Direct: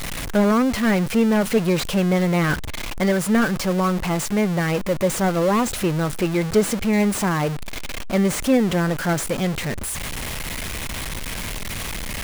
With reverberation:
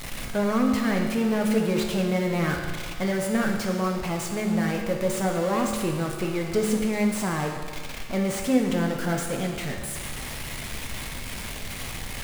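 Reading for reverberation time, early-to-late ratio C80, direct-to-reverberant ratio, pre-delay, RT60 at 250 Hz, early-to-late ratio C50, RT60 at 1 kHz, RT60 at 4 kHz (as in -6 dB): 1.7 s, 5.5 dB, 1.0 dB, 9 ms, 1.7 s, 3.5 dB, 1.7 s, 1.6 s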